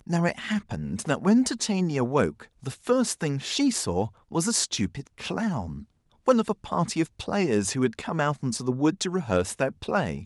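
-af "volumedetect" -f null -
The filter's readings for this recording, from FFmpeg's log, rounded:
mean_volume: -26.4 dB
max_volume: -6.4 dB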